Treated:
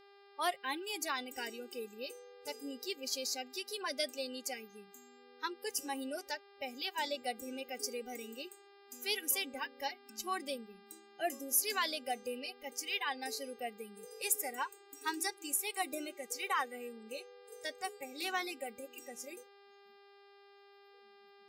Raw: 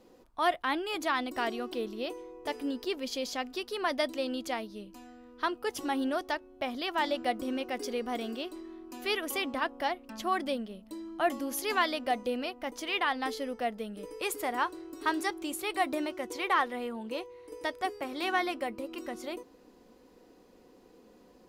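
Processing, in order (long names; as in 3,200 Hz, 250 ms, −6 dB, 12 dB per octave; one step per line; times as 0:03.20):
bass and treble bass −9 dB, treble +14 dB
noise reduction from a noise print of the clip's start 27 dB
hum with harmonics 400 Hz, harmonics 13, −54 dBFS −5 dB per octave
level −7 dB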